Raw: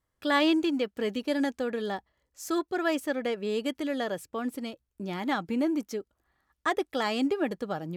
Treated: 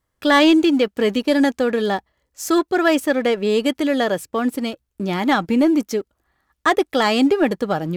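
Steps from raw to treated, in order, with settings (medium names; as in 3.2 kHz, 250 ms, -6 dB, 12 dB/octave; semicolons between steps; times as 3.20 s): waveshaping leveller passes 1; trim +8 dB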